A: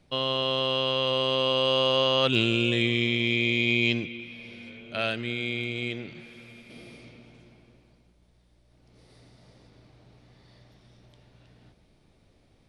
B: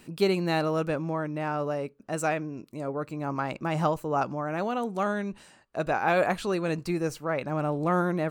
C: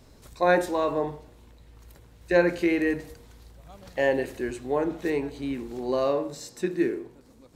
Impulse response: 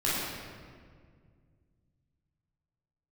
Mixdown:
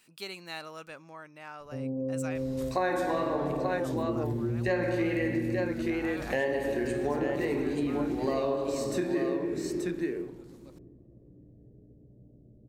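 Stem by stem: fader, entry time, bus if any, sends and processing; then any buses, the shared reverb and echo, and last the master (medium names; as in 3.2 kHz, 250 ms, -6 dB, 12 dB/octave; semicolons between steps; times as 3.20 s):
-5.5 dB, 1.60 s, send -7.5 dB, no echo send, steep low-pass 530 Hz 36 dB/octave
-14.5 dB, 0.00 s, no send, no echo send, tilt shelf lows -9.5 dB, about 830 Hz
+2.5 dB, 2.35 s, send -10.5 dB, echo send -3.5 dB, wow and flutter 71 cents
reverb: on, RT60 1.9 s, pre-delay 14 ms
echo: delay 882 ms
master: compression 4:1, threshold -28 dBFS, peak gain reduction 15.5 dB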